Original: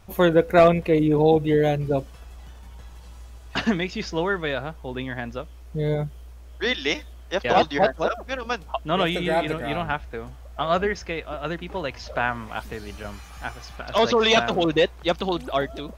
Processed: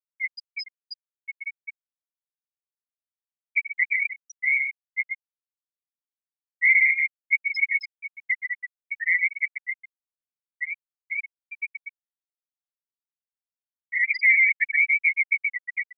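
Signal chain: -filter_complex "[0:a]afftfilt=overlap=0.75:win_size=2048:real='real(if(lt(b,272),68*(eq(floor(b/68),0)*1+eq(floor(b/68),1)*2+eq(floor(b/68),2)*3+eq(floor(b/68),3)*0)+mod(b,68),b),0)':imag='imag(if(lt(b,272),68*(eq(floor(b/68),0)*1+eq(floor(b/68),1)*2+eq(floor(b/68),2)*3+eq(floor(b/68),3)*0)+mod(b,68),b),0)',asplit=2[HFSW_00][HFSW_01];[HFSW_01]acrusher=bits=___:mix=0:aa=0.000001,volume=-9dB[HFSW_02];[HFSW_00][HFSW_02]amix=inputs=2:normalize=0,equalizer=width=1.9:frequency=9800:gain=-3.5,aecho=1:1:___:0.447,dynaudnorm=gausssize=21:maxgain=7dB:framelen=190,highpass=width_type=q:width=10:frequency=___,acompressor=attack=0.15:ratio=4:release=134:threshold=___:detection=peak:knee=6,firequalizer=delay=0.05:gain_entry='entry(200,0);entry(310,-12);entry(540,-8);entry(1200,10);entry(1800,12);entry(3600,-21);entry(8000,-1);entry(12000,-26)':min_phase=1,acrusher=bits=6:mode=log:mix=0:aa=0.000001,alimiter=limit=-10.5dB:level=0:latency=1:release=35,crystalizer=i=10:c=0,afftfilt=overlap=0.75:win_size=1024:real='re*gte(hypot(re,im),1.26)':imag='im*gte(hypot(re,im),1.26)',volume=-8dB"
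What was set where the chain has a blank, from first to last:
6, 125, 2300, -19dB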